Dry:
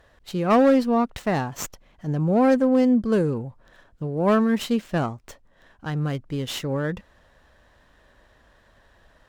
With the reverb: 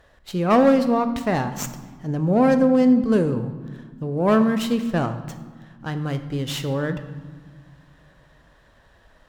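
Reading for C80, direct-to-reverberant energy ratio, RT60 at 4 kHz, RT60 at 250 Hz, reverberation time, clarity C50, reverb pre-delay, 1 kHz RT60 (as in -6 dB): 12.5 dB, 9.0 dB, 1.0 s, 2.4 s, 1.6 s, 11.0 dB, 16 ms, 1.5 s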